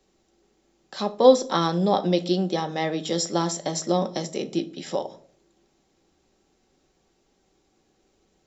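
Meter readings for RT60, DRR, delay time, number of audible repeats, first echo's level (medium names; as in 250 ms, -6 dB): 0.55 s, 7.0 dB, no echo, no echo, no echo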